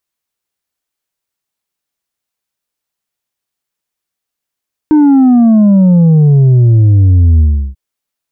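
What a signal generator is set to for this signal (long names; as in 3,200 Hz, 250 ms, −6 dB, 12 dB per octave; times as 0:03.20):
bass drop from 310 Hz, over 2.84 s, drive 4 dB, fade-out 0.35 s, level −4 dB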